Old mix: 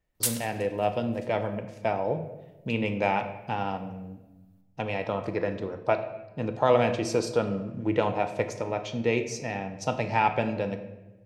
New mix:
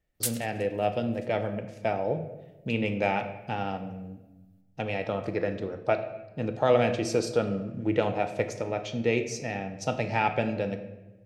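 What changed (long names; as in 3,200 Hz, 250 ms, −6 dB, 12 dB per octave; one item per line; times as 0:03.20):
background: send off
master: add parametric band 990 Hz −11 dB 0.25 octaves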